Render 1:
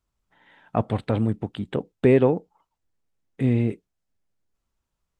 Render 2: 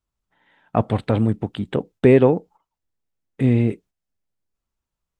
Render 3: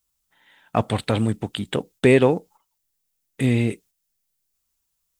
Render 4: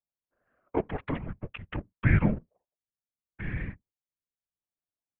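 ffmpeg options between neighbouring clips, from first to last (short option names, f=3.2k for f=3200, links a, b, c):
-af "agate=range=-8dB:threshold=-48dB:ratio=16:detection=peak,volume=4dB"
-af "crystalizer=i=7:c=0,volume=-3dB"
-af "adynamicsmooth=sensitivity=5.5:basefreq=840,highpass=f=280:t=q:w=0.5412,highpass=f=280:t=q:w=1.307,lowpass=f=2.7k:t=q:w=0.5176,lowpass=f=2.7k:t=q:w=0.7071,lowpass=f=2.7k:t=q:w=1.932,afreqshift=-300,afftfilt=real='hypot(re,im)*cos(2*PI*random(0))':imag='hypot(re,im)*sin(2*PI*random(1))':win_size=512:overlap=0.75"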